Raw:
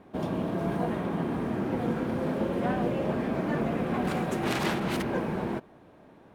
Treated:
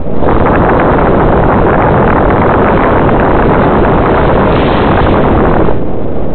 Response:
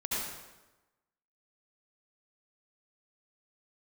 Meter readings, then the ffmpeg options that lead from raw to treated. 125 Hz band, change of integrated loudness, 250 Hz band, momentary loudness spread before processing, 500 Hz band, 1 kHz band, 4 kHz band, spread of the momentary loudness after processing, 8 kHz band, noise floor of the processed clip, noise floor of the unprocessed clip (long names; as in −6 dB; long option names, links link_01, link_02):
+22.5 dB, +21.5 dB, +18.5 dB, 3 LU, +23.0 dB, +25.0 dB, +15.5 dB, 2 LU, below −25 dB, −9 dBFS, −55 dBFS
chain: -filter_complex "[1:a]atrim=start_sample=2205,afade=type=out:start_time=0.25:duration=0.01,atrim=end_sample=11466[link_01];[0:a][link_01]afir=irnorm=-1:irlink=0,aresample=8000,aeval=exprs='abs(val(0))':channel_layout=same,aresample=44100,bandreject=frequency=60:width_type=h:width=6,bandreject=frequency=120:width_type=h:width=6,bandreject=frequency=180:width_type=h:width=6,bandreject=frequency=240:width_type=h:width=6,bandreject=frequency=300:width_type=h:width=6,bandreject=frequency=360:width_type=h:width=6,bandreject=frequency=420:width_type=h:width=6,acrossover=split=550[link_02][link_03];[link_02]aeval=exprs='0.251*sin(PI/2*10*val(0)/0.251)':channel_layout=same[link_04];[link_04][link_03]amix=inputs=2:normalize=0,lowshelf=frequency=500:gain=-4,acompressor=threshold=-25dB:ratio=6,alimiter=level_in=27.5dB:limit=-1dB:release=50:level=0:latency=1,volume=-1dB"